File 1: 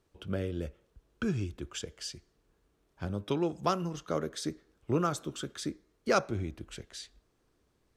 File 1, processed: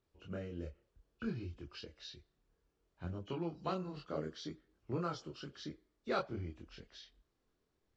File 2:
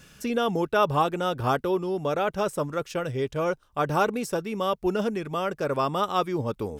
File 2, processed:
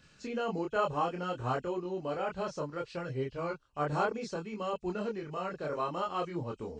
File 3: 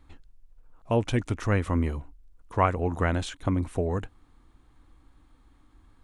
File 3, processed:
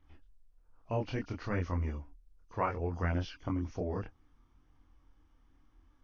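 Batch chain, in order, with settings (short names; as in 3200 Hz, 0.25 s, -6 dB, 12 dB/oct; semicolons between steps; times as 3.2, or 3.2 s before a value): nonlinear frequency compression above 2400 Hz 1.5:1; chorus voices 2, 0.63 Hz, delay 25 ms, depth 2.5 ms; gain -5.5 dB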